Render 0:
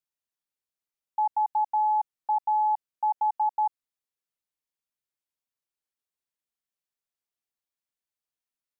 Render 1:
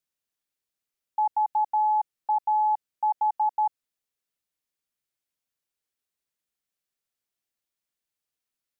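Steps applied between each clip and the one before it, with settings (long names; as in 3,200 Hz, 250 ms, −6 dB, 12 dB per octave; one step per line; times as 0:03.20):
parametric band 950 Hz −3.5 dB
level +4 dB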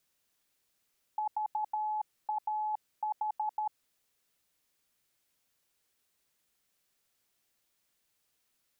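compressor whose output falls as the input rises −33 dBFS, ratio −1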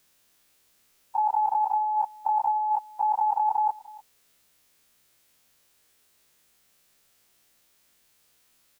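every bin's largest magnitude spread in time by 60 ms
single-tap delay 298 ms −21 dB
level +8 dB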